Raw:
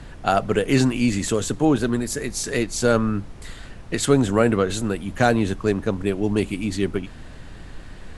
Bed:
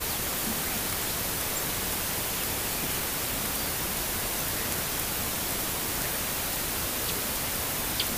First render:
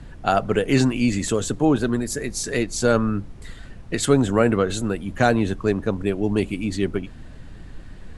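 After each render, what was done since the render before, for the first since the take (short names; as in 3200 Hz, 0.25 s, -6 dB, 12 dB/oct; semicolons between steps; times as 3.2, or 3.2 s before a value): denoiser 6 dB, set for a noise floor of -40 dBFS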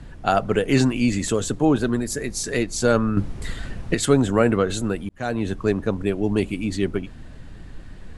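3.17–3.94 gain +8 dB; 5.09–5.58 fade in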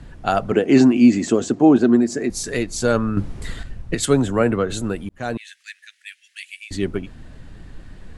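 0.52–2.3 speaker cabinet 140–7400 Hz, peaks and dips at 240 Hz +9 dB, 350 Hz +9 dB, 710 Hz +8 dB, 3600 Hz -5 dB; 3.63–4.72 three-band expander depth 40%; 5.37–6.71 steep high-pass 1700 Hz 72 dB/oct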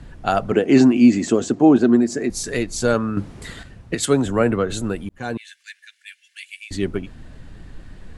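2.94–4.26 HPF 130 Hz 6 dB/oct; 5.19–6.53 notch comb 640 Hz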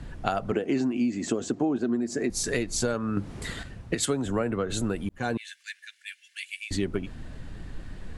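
compressor 10:1, threshold -23 dBFS, peak gain reduction 16 dB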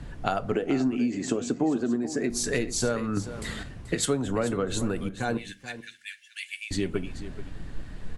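echo 0.433 s -13.5 dB; shoebox room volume 160 m³, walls furnished, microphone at 0.33 m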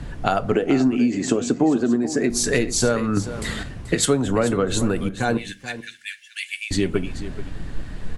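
gain +7 dB; limiter -2 dBFS, peak gain reduction 1.5 dB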